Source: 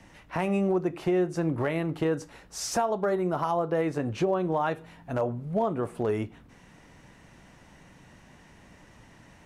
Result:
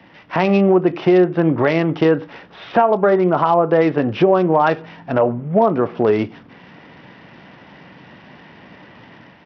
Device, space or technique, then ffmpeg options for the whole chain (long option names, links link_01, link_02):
Bluetooth headset: -af "highpass=150,dynaudnorm=framelen=110:gausssize=5:maxgain=5dB,aresample=8000,aresample=44100,volume=7.5dB" -ar 44100 -c:a sbc -b:a 64k